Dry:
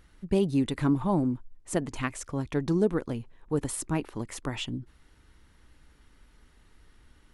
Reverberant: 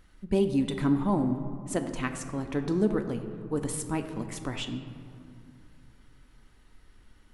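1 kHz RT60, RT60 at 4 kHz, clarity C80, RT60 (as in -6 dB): 2.5 s, 1.2 s, 10.0 dB, 2.6 s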